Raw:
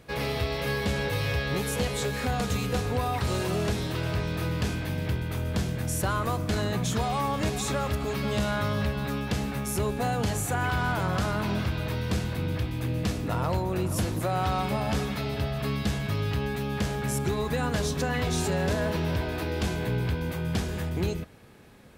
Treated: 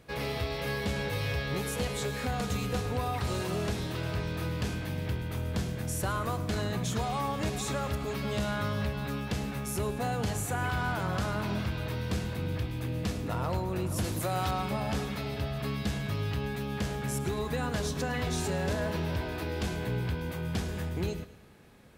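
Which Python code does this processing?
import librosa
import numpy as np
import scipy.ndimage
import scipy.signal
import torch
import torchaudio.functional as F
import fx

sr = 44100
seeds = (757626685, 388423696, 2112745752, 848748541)

y = fx.high_shelf(x, sr, hz=3700.0, db=8.5, at=(14.04, 14.51))
y = fx.echo_feedback(y, sr, ms=107, feedback_pct=47, wet_db=-16)
y = y * 10.0 ** (-4.0 / 20.0)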